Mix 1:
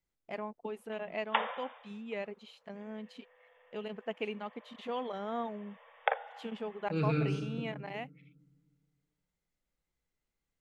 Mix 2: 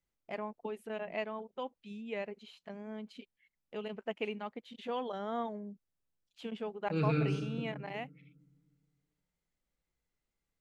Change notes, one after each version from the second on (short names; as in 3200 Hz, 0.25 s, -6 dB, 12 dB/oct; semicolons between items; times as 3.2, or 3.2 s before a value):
background: muted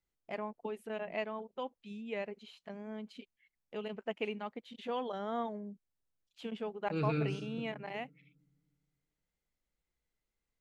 second voice: send -7.0 dB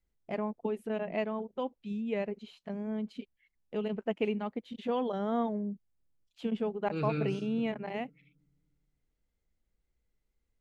first voice: add low shelf 480 Hz +11.5 dB